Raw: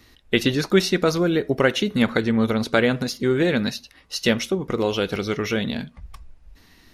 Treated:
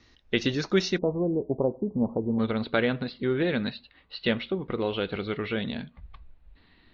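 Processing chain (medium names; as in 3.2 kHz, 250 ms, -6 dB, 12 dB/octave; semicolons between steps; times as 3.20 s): steep low-pass 6.5 kHz 72 dB/octave, from 0.97 s 990 Hz, from 2.38 s 4.3 kHz; trim -6 dB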